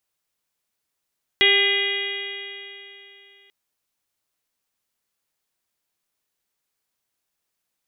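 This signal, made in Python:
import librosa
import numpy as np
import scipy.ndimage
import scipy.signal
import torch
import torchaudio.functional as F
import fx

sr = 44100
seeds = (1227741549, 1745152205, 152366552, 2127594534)

y = fx.additive_stiff(sr, length_s=2.09, hz=395.0, level_db=-22, upper_db=(-11.5, -17.0, -10.0, 6.0, -1.0, 1.0, 5.0, -5), decay_s=3.08, stiffness=0.0015)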